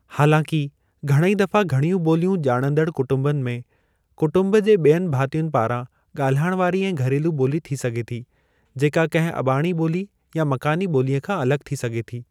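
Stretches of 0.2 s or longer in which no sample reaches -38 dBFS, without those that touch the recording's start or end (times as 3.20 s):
0.69–1.03 s
3.62–4.18 s
5.85–6.15 s
8.23–8.76 s
10.05–10.33 s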